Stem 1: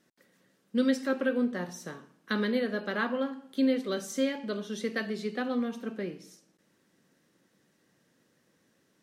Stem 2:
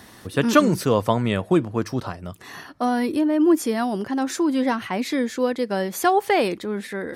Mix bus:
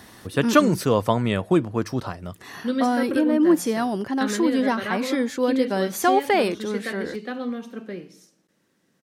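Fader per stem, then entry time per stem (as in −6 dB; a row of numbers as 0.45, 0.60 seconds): +1.0, −0.5 decibels; 1.90, 0.00 seconds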